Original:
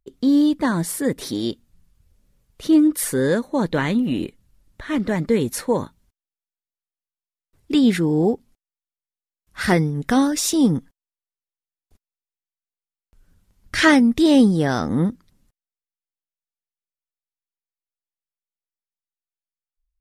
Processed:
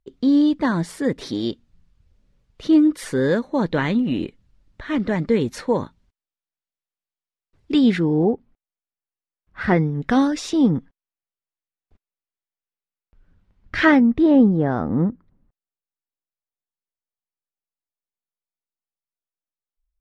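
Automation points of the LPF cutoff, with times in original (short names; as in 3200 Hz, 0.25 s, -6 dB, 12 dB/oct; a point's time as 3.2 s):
7.88 s 4700 Hz
8.33 s 1900 Hz
9.66 s 1900 Hz
10.27 s 4600 Hz
10.63 s 2700 Hz
13.76 s 2700 Hz
14.39 s 1200 Hz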